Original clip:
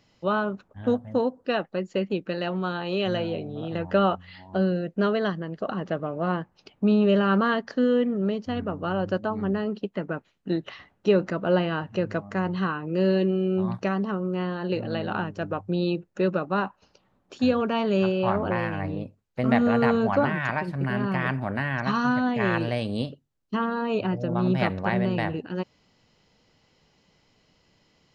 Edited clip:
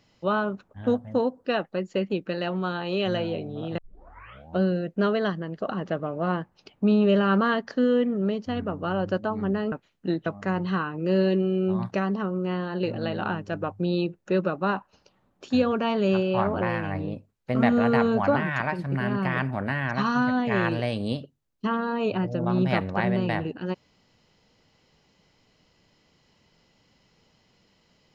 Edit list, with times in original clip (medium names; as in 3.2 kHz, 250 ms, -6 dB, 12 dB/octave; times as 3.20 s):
3.78 s: tape start 0.82 s
9.72–10.14 s: delete
10.68–12.15 s: delete